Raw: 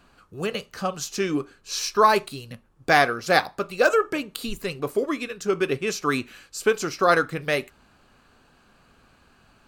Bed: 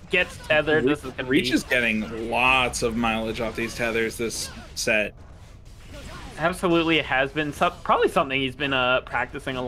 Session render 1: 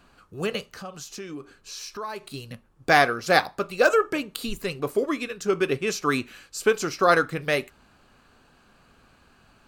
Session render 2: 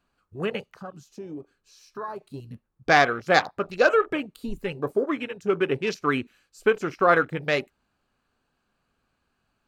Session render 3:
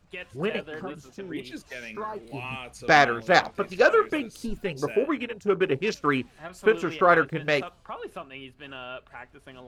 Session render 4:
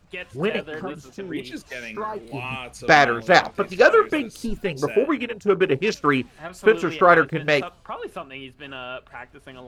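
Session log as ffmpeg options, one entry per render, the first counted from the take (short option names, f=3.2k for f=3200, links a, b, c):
-filter_complex "[0:a]asettb=1/sr,asplit=3[a][b][c];[a]atrim=end=0.714[d];[b]atrim=start=0.71:end=2.34,asetpts=PTS-STARTPTS,afade=t=in:d=0.004:c=qsin,afade=t=out:st=1.626:d=0.004:c=qsin,acompressor=threshold=-39dB:ratio=2.5:attack=3.2:release=140:knee=1:detection=peak[e];[c]atrim=start=2.336[f];[d][e]acrossfade=d=0.004:c1=hsin:c2=qsin[g];[g][f]acrossfade=d=0.004:c1=qsin:c2=hsin"
-af "afwtdn=0.0178"
-filter_complex "[1:a]volume=-17.5dB[a];[0:a][a]amix=inputs=2:normalize=0"
-af "volume=4.5dB,alimiter=limit=-1dB:level=0:latency=1"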